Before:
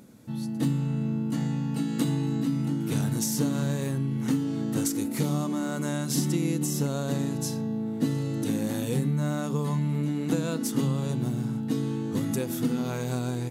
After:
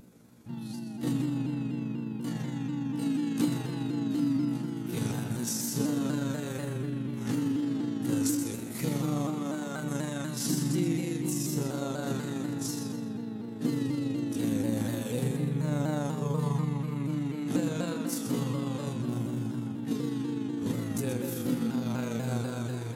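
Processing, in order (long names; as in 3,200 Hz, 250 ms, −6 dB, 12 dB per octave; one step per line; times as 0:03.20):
spring reverb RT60 1.8 s, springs 47 ms, chirp 65 ms, DRR 4.5 dB
time stretch by overlap-add 1.7×, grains 83 ms
on a send: feedback echo with a high-pass in the loop 128 ms, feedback 39%, level −8.5 dB
on the sum: pitch modulation by a square or saw wave saw down 4.1 Hz, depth 100 cents
level −3 dB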